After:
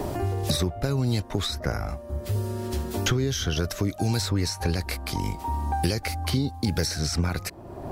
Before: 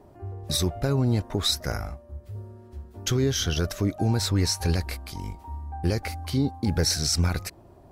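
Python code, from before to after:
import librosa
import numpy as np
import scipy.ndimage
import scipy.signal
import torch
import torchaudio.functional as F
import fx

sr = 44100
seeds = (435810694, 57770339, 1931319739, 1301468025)

y = fx.high_shelf(x, sr, hz=3000.0, db=-8.5, at=(1.2, 1.89))
y = fx.band_squash(y, sr, depth_pct=100)
y = y * librosa.db_to_amplitude(-1.0)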